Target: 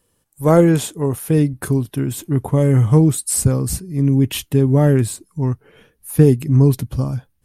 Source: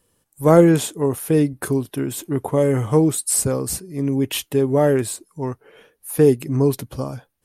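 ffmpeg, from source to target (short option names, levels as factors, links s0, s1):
-af "asubboost=boost=5:cutoff=220"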